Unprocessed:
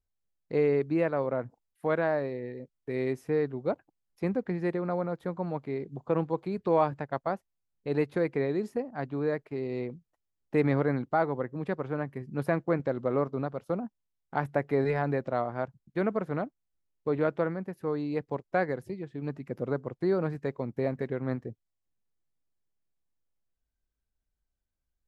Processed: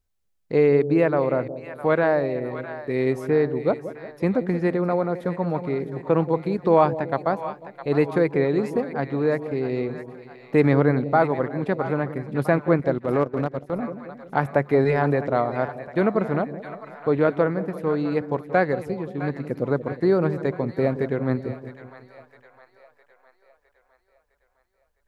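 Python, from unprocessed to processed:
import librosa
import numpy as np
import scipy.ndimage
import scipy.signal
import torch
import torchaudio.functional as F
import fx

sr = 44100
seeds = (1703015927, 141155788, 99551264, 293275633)

y = fx.echo_split(x, sr, split_hz=670.0, low_ms=178, high_ms=659, feedback_pct=52, wet_db=-11.5)
y = fx.transient(y, sr, attack_db=-7, sustain_db=-11, at=(12.97, 13.81), fade=0.02)
y = y * 10.0 ** (7.5 / 20.0)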